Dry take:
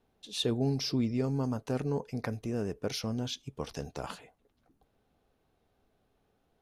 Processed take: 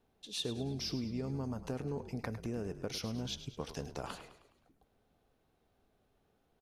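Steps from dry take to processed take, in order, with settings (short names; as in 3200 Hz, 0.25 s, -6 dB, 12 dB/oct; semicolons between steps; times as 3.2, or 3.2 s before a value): compressor, threshold -33 dBFS, peak gain reduction 8.5 dB; on a send: frequency-shifting echo 0.104 s, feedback 49%, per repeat -46 Hz, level -12 dB; on the sum: gain -1.5 dB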